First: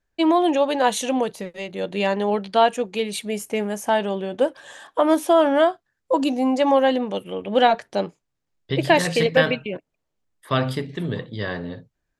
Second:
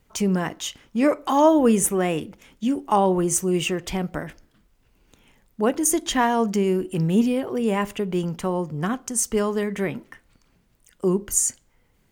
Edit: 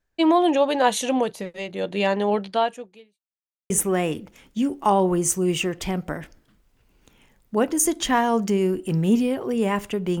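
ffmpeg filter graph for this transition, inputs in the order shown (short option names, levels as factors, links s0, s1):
-filter_complex "[0:a]apad=whole_dur=10.2,atrim=end=10.2,asplit=2[s0][s1];[s0]atrim=end=3.2,asetpts=PTS-STARTPTS,afade=t=out:st=2.41:d=0.79:c=qua[s2];[s1]atrim=start=3.2:end=3.7,asetpts=PTS-STARTPTS,volume=0[s3];[1:a]atrim=start=1.76:end=8.26,asetpts=PTS-STARTPTS,afade=t=in:d=0.004:c=hsin[s4];[s2][s3][s4]concat=n=3:v=0:a=1"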